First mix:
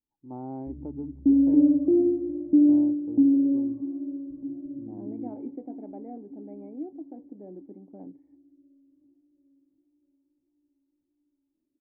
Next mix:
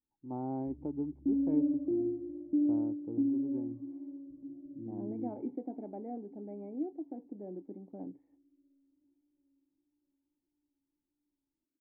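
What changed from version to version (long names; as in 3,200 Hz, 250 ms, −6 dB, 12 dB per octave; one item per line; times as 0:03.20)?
background −11.0 dB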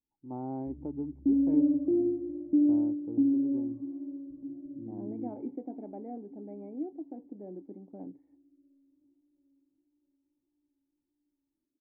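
background +5.0 dB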